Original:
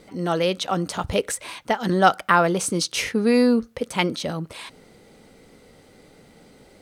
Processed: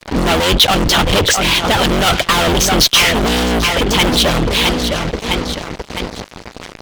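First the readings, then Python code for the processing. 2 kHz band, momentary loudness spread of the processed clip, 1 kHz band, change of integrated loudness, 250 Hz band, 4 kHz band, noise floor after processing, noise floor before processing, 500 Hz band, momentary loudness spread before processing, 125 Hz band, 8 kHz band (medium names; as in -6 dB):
+11.5 dB, 14 LU, +6.5 dB, +9.5 dB, +6.0 dB, +18.5 dB, -38 dBFS, -53 dBFS, +6.5 dB, 12 LU, +11.5 dB, +13.0 dB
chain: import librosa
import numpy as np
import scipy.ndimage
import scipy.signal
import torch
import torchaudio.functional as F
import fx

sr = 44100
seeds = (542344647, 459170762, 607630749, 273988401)

y = fx.octave_divider(x, sr, octaves=2, level_db=3.0)
y = scipy.signal.sosfilt(scipy.signal.butter(6, 6400.0, 'lowpass', fs=sr, output='sos'), y)
y = fx.low_shelf(y, sr, hz=78.0, db=-4.0)
y = fx.echo_feedback(y, sr, ms=660, feedback_pct=49, wet_db=-14.0)
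y = fx.fuzz(y, sr, gain_db=40.0, gate_db=-43.0)
y = fx.hpss(y, sr, part='percussive', gain_db=9)
y = fx.dynamic_eq(y, sr, hz=3200.0, q=2.8, threshold_db=-28.0, ratio=4.0, max_db=7)
y = y * 10.0 ** (-4.5 / 20.0)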